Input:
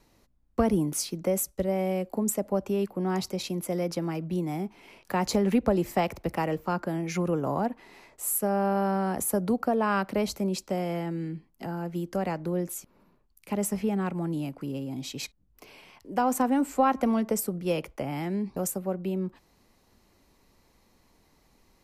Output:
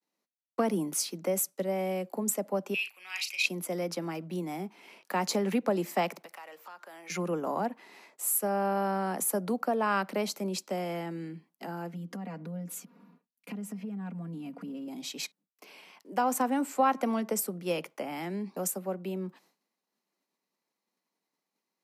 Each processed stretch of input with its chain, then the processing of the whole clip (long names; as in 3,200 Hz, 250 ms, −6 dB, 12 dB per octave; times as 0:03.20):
0:02.74–0:03.46: high-pass with resonance 2,500 Hz, resonance Q 13 + double-tracking delay 39 ms −8.5 dB
0:06.25–0:07.10: high-pass filter 810 Hz + downward compressor 4 to 1, threshold −47 dBFS + leveller curve on the samples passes 1
0:11.93–0:14.88: bass and treble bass +15 dB, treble −6 dB + comb filter 4.2 ms, depth 91% + downward compressor, threshold −31 dBFS
whole clip: Butterworth high-pass 160 Hz 72 dB per octave; downward expander −53 dBFS; low-shelf EQ 440 Hz −7 dB